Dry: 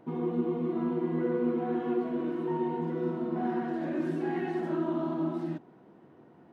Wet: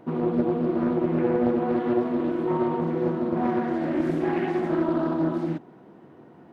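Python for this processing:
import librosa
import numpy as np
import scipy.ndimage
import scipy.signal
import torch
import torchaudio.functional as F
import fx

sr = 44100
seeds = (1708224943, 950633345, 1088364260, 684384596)

y = fx.doppler_dist(x, sr, depth_ms=0.52)
y = F.gain(torch.from_numpy(y), 6.5).numpy()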